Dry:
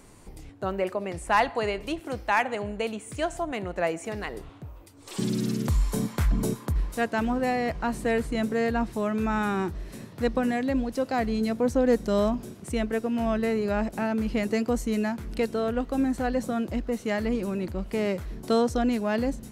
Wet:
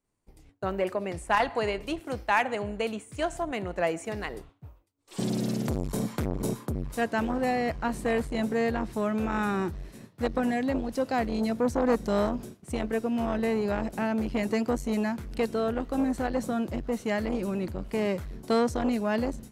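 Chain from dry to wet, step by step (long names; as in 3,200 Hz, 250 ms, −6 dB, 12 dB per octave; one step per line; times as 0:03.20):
downward expander −34 dBFS
saturating transformer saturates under 560 Hz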